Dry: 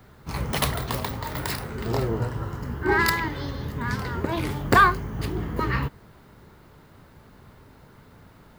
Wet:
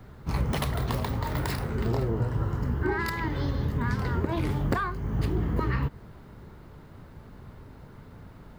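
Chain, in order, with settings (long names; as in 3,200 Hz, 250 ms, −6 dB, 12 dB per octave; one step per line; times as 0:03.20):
downward compressor 8 to 1, threshold −26 dBFS, peak gain reduction 14.5 dB
spectral tilt −1.5 dB per octave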